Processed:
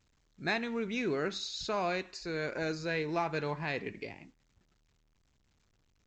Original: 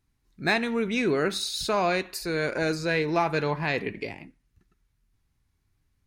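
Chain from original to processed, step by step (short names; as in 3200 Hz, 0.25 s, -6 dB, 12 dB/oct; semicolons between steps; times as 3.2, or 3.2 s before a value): gain -8 dB; A-law 128 kbps 16000 Hz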